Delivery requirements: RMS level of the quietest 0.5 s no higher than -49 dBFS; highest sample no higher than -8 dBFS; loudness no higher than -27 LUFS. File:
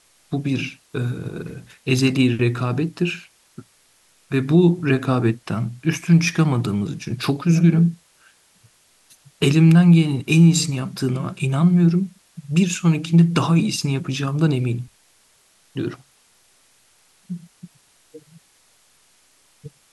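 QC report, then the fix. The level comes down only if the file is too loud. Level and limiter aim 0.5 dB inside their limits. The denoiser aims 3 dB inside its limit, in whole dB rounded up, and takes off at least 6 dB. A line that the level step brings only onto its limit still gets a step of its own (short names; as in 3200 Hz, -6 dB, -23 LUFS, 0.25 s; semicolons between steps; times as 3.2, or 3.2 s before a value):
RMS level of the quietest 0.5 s -58 dBFS: OK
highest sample -5.0 dBFS: fail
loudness -19.0 LUFS: fail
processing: gain -8.5 dB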